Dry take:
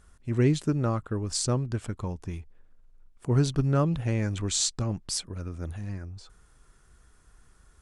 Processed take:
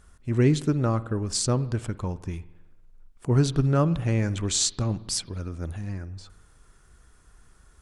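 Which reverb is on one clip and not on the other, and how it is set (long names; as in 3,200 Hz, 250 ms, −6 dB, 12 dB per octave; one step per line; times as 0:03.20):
spring reverb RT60 1 s, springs 53 ms, chirp 40 ms, DRR 16.5 dB
level +2.5 dB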